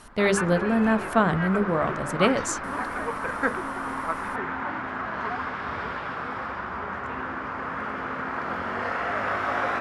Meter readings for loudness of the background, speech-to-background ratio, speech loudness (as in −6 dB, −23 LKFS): −30.0 LKFS, 5.5 dB, −24.5 LKFS